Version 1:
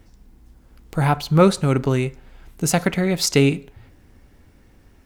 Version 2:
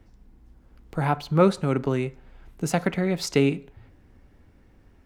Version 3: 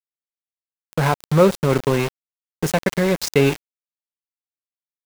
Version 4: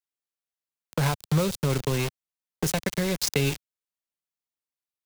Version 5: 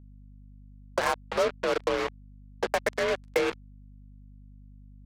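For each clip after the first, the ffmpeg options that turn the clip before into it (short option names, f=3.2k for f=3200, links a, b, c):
-filter_complex "[0:a]highshelf=f=3.9k:g=-10,acrossover=split=140[a][b];[a]acompressor=threshold=-35dB:ratio=6[c];[c][b]amix=inputs=2:normalize=0,volume=-3.5dB"
-filter_complex "[0:a]aecho=1:1:1.9:0.36,asplit=2[a][b];[b]alimiter=limit=-13.5dB:level=0:latency=1:release=100,volume=1dB[c];[a][c]amix=inputs=2:normalize=0,aeval=exprs='val(0)*gte(abs(val(0)),0.0891)':c=same"
-filter_complex "[0:a]acrossover=split=130|3000[a][b][c];[b]acompressor=threshold=-26dB:ratio=6[d];[a][d][c]amix=inputs=3:normalize=0"
-af "highpass=f=340:t=q:w=0.5412,highpass=f=340:t=q:w=1.307,lowpass=f=2.1k:t=q:w=0.5176,lowpass=f=2.1k:t=q:w=0.7071,lowpass=f=2.1k:t=q:w=1.932,afreqshift=51,acrusher=bits=4:mix=0:aa=0.5,aeval=exprs='val(0)+0.00251*(sin(2*PI*50*n/s)+sin(2*PI*2*50*n/s)/2+sin(2*PI*3*50*n/s)/3+sin(2*PI*4*50*n/s)/4+sin(2*PI*5*50*n/s)/5)':c=same,volume=3.5dB"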